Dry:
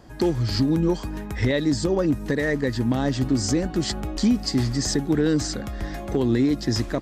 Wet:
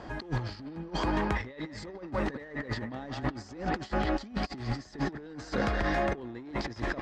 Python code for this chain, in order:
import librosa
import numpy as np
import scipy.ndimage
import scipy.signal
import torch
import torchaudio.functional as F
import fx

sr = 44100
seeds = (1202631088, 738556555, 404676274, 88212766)

p1 = 10.0 ** (-25.0 / 20.0) * np.tanh(x / 10.0 ** (-25.0 / 20.0))
p2 = x + F.gain(torch.from_numpy(p1), -3.5).numpy()
p3 = fx.low_shelf(p2, sr, hz=400.0, db=-11.5)
p4 = fx.echo_wet_bandpass(p3, sr, ms=174, feedback_pct=56, hz=1400.0, wet_db=-5.0)
p5 = fx.over_compress(p4, sr, threshold_db=-33.0, ratio=-0.5)
p6 = scipy.signal.sosfilt(scipy.signal.butter(2, 5600.0, 'lowpass', fs=sr, output='sos'), p5)
p7 = fx.high_shelf(p6, sr, hz=3200.0, db=-12.0)
y = F.gain(torch.from_numpy(p7), 1.0).numpy()